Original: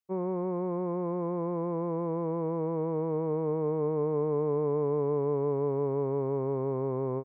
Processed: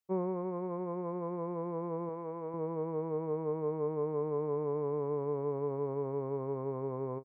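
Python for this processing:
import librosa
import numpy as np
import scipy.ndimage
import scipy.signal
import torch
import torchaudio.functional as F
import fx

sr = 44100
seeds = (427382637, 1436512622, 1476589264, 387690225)

y = fx.dereverb_blind(x, sr, rt60_s=1.6)
y = fx.low_shelf(y, sr, hz=390.0, db=-8.5, at=(2.09, 2.54))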